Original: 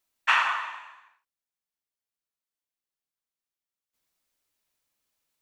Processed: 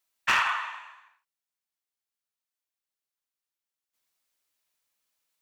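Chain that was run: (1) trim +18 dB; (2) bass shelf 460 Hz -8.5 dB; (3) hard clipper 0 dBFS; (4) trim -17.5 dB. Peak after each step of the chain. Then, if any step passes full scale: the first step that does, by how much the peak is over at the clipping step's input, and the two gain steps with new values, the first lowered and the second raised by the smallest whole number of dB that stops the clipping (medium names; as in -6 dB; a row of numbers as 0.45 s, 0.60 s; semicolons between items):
+10.0 dBFS, +9.5 dBFS, 0.0 dBFS, -17.5 dBFS; step 1, 9.5 dB; step 1 +8 dB, step 4 -7.5 dB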